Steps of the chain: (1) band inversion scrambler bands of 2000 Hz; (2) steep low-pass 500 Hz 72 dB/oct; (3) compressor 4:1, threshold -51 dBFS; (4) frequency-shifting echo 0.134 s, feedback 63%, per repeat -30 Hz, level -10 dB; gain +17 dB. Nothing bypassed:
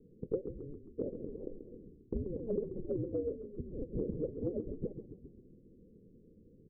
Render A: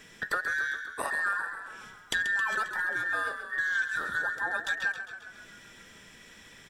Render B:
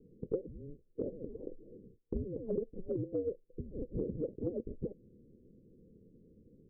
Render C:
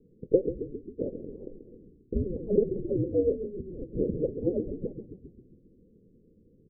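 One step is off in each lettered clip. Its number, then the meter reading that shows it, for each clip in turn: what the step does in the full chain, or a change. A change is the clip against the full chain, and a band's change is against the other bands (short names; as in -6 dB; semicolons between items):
2, momentary loudness spread change +1 LU; 4, echo-to-direct -8.0 dB to none; 3, mean gain reduction 5.0 dB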